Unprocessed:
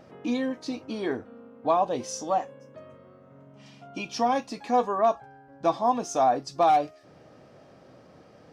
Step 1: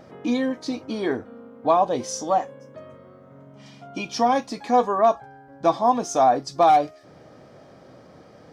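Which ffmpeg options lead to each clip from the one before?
-af "bandreject=f=2700:w=10,volume=1.68"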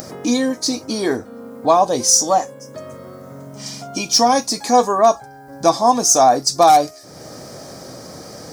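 -filter_complex "[0:a]asplit=2[s0][s1];[s1]acompressor=mode=upward:threshold=0.0398:ratio=2.5,volume=1.26[s2];[s0][s2]amix=inputs=2:normalize=0,aexciter=amount=4:drive=8.9:freq=4500,volume=0.794"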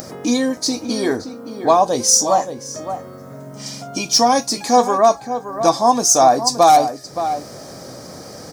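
-filter_complex "[0:a]asplit=2[s0][s1];[s1]adelay=571.4,volume=0.316,highshelf=f=4000:g=-12.9[s2];[s0][s2]amix=inputs=2:normalize=0"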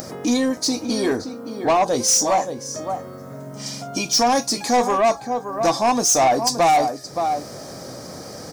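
-af "asoftclip=type=tanh:threshold=0.251"

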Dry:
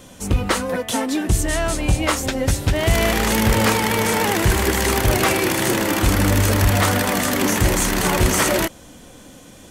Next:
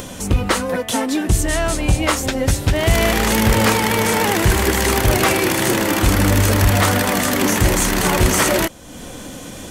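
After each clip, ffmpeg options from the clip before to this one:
-af "acompressor=mode=upward:threshold=0.0562:ratio=2.5,volume=1.26"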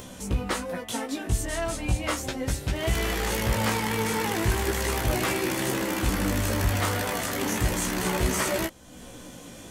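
-af "flanger=delay=15.5:depth=2.6:speed=0.35,volume=0.422"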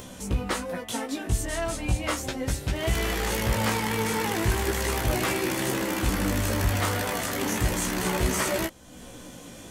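-af anull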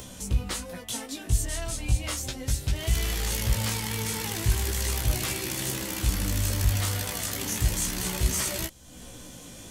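-filter_complex "[0:a]acrossover=split=140|3000[s0][s1][s2];[s1]acompressor=threshold=0.001:ratio=1.5[s3];[s0][s3][s2]amix=inputs=3:normalize=0,volume=1.33"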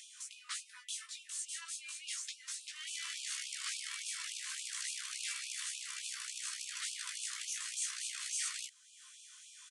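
-af "aresample=22050,aresample=44100,afftfilt=real='re*gte(b*sr/1024,960*pow(2400/960,0.5+0.5*sin(2*PI*3.5*pts/sr)))':imag='im*gte(b*sr/1024,960*pow(2400/960,0.5+0.5*sin(2*PI*3.5*pts/sr)))':win_size=1024:overlap=0.75,volume=0.422"

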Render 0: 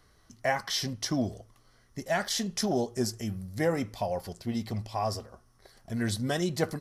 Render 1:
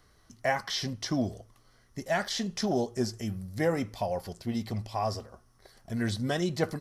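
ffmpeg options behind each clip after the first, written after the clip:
-filter_complex "[0:a]acrossover=split=6000[s0][s1];[s1]acompressor=threshold=0.00398:ratio=4:attack=1:release=60[s2];[s0][s2]amix=inputs=2:normalize=0"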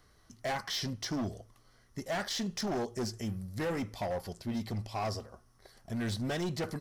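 -af "volume=26.6,asoftclip=hard,volume=0.0376,volume=0.841"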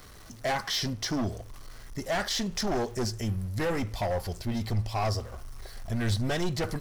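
-af "aeval=exprs='val(0)+0.5*0.00266*sgn(val(0))':c=same,asubboost=boost=5:cutoff=80,volume=1.78"

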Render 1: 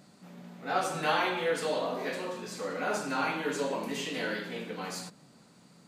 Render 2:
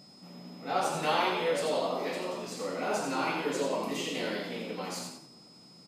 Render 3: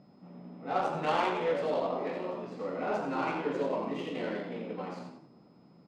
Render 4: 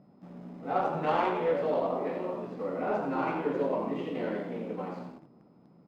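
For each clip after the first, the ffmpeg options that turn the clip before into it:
-filter_complex "[0:a]equalizer=f=1600:t=o:w=0.33:g=-9.5,asplit=5[s0][s1][s2][s3][s4];[s1]adelay=86,afreqshift=74,volume=0.531[s5];[s2]adelay=172,afreqshift=148,volume=0.17[s6];[s3]adelay=258,afreqshift=222,volume=0.0543[s7];[s4]adelay=344,afreqshift=296,volume=0.0174[s8];[s0][s5][s6][s7][s8]amix=inputs=5:normalize=0,aeval=exprs='val(0)+0.00178*sin(2*PI*5100*n/s)':c=same"
-af "adynamicsmooth=sensitivity=1.5:basefreq=1600"
-filter_complex "[0:a]asplit=2[s0][s1];[s1]acrusher=bits=7:mix=0:aa=0.000001,volume=0.355[s2];[s0][s2]amix=inputs=2:normalize=0,lowpass=f=1500:p=1"

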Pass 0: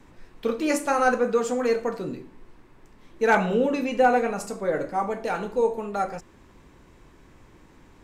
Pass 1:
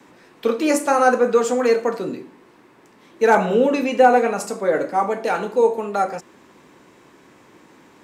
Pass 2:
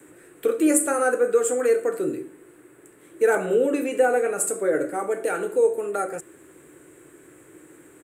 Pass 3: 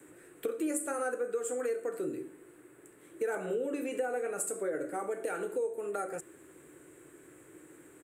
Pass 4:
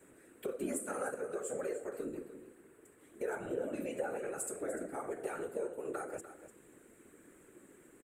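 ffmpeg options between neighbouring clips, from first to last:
-filter_complex "[0:a]highpass=220,acrossover=split=290|1300|5200[s0][s1][s2][s3];[s2]alimiter=level_in=1.33:limit=0.0631:level=0:latency=1:release=261,volume=0.75[s4];[s0][s1][s4][s3]amix=inputs=4:normalize=0,volume=2.11"
-filter_complex "[0:a]asplit=2[s0][s1];[s1]acompressor=threshold=0.0708:ratio=6,volume=0.891[s2];[s0][s2]amix=inputs=2:normalize=0,firequalizer=gain_entry='entry(150,0);entry(220,-14);entry(310,5);entry(950,-13);entry(1400,0);entry(2100,-4);entry(5400,-15);entry(8100,14);entry(13000,8)':delay=0.05:min_phase=1,volume=0.531"
-af "acompressor=threshold=0.0447:ratio=3,volume=0.531"
-af "afftfilt=real='hypot(re,im)*cos(2*PI*random(0))':imag='hypot(re,im)*sin(2*PI*random(1))':win_size=512:overlap=0.75,aecho=1:1:296:0.237,volume=1.12"

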